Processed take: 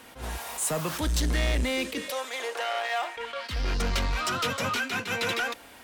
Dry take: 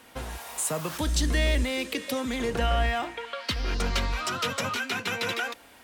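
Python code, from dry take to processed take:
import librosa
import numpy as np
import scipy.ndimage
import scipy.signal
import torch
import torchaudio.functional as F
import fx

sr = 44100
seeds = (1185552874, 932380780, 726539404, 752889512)

y = 10.0 ** (-25.0 / 20.0) * np.tanh(x / 10.0 ** (-25.0 / 20.0))
y = fx.highpass(y, sr, hz=520.0, slope=24, at=(2.1, 3.17))
y = fx.attack_slew(y, sr, db_per_s=160.0)
y = y * 10.0 ** (3.5 / 20.0)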